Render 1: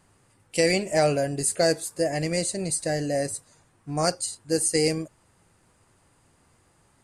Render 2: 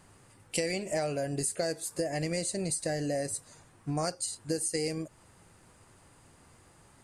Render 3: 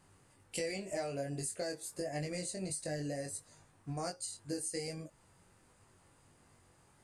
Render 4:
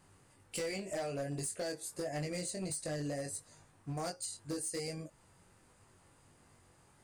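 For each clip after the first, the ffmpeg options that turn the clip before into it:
-af "acompressor=threshold=-33dB:ratio=6,volume=3.5dB"
-af "flanger=delay=20:depth=2.2:speed=1.4,volume=-4dB"
-af "volume=34dB,asoftclip=hard,volume=-34dB,volume=1dB"

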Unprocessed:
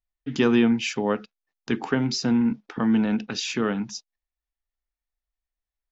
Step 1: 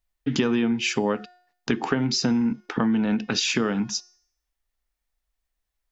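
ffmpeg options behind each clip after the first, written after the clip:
-af "bandreject=f=359.8:t=h:w=4,bandreject=f=719.6:t=h:w=4,bandreject=f=1.0794k:t=h:w=4,bandreject=f=1.4392k:t=h:w=4,bandreject=f=1.799k:t=h:w=4,bandreject=f=2.1588k:t=h:w=4,bandreject=f=2.5186k:t=h:w=4,bandreject=f=2.8784k:t=h:w=4,bandreject=f=3.2382k:t=h:w=4,bandreject=f=3.598k:t=h:w=4,bandreject=f=3.9578k:t=h:w=4,bandreject=f=4.3176k:t=h:w=4,bandreject=f=4.6774k:t=h:w=4,bandreject=f=5.0372k:t=h:w=4,bandreject=f=5.397k:t=h:w=4,bandreject=f=5.7568k:t=h:w=4,bandreject=f=6.1166k:t=h:w=4,bandreject=f=6.4764k:t=h:w=4,bandreject=f=6.8362k:t=h:w=4,bandreject=f=7.196k:t=h:w=4,bandreject=f=7.5558k:t=h:w=4,bandreject=f=7.9156k:t=h:w=4,bandreject=f=8.2754k:t=h:w=4,bandreject=f=8.6352k:t=h:w=4,bandreject=f=8.995k:t=h:w=4,bandreject=f=9.3548k:t=h:w=4,bandreject=f=9.7146k:t=h:w=4,bandreject=f=10.0744k:t=h:w=4,bandreject=f=10.4342k:t=h:w=4,bandreject=f=10.794k:t=h:w=4,bandreject=f=11.1538k:t=h:w=4,bandreject=f=11.5136k:t=h:w=4,bandreject=f=11.8734k:t=h:w=4,bandreject=f=12.2332k:t=h:w=4,bandreject=f=12.593k:t=h:w=4,bandreject=f=12.9528k:t=h:w=4,bandreject=f=13.3126k:t=h:w=4,bandreject=f=13.6724k:t=h:w=4,bandreject=f=14.0322k:t=h:w=4,acompressor=threshold=-28dB:ratio=6,volume=8dB"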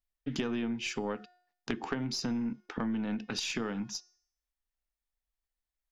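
-af "aeval=exprs='0.447*(cos(1*acos(clip(val(0)/0.447,-1,1)))-cos(1*PI/2))+0.1*(cos(2*acos(clip(val(0)/0.447,-1,1)))-cos(2*PI/2))+0.0708*(cos(3*acos(clip(val(0)/0.447,-1,1)))-cos(3*PI/2))+0.00708*(cos(4*acos(clip(val(0)/0.447,-1,1)))-cos(4*PI/2))+0.0251*(cos(5*acos(clip(val(0)/0.447,-1,1)))-cos(5*PI/2))':c=same,volume=-8.5dB"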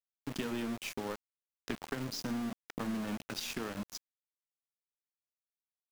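-af "flanger=delay=8.9:depth=9.3:regen=-84:speed=0.75:shape=triangular,aecho=1:1:1153:0.0668,aeval=exprs='val(0)*gte(abs(val(0)),0.0112)':c=same,volume=1dB"

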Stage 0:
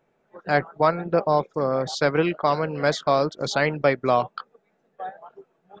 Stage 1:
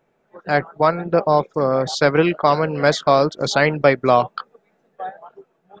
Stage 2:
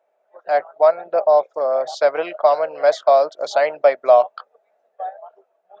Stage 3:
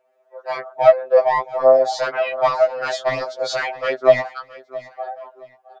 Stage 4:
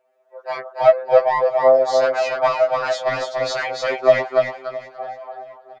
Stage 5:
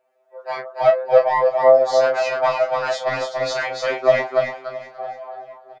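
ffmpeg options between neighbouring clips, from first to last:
-af "dynaudnorm=f=200:g=11:m=4dB,volume=2.5dB"
-af "highpass=f=630:t=q:w=5.6,volume=-8.5dB"
-af "acontrast=81,aecho=1:1:668|1336:0.119|0.0333,afftfilt=real='re*2.45*eq(mod(b,6),0)':imag='im*2.45*eq(mod(b,6),0)':win_size=2048:overlap=0.75,volume=-1dB"
-af "aecho=1:1:289|578|867:0.631|0.126|0.0252,volume=-1dB"
-filter_complex "[0:a]asplit=2[a][b];[b]adelay=29,volume=-7dB[c];[a][c]amix=inputs=2:normalize=0,volume=-1dB"

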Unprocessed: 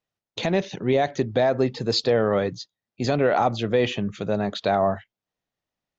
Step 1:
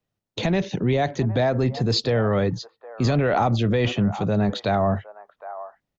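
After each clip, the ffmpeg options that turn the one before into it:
-filter_complex "[0:a]lowshelf=f=440:g=11,acrossover=split=120|900|1200[a][b][c][d];[b]alimiter=limit=-16.5dB:level=0:latency=1[e];[c]aecho=1:1:762:0.631[f];[a][e][f][d]amix=inputs=4:normalize=0"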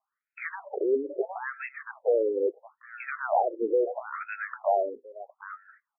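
-filter_complex "[0:a]acrossover=split=370|1400[a][b][c];[a]acompressor=threshold=-33dB:ratio=4[d];[b]acompressor=threshold=-27dB:ratio=4[e];[c]acompressor=threshold=-39dB:ratio=4[f];[d][e][f]amix=inputs=3:normalize=0,asubboost=boost=7:cutoff=99,afftfilt=real='re*between(b*sr/1024,360*pow(1900/360,0.5+0.5*sin(2*PI*0.75*pts/sr))/1.41,360*pow(1900/360,0.5+0.5*sin(2*PI*0.75*pts/sr))*1.41)':imag='im*between(b*sr/1024,360*pow(1900/360,0.5+0.5*sin(2*PI*0.75*pts/sr))/1.41,360*pow(1900/360,0.5+0.5*sin(2*PI*0.75*pts/sr))*1.41)':win_size=1024:overlap=0.75,volume=7dB"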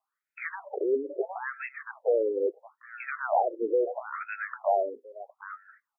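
-af "highpass=f=230:p=1"

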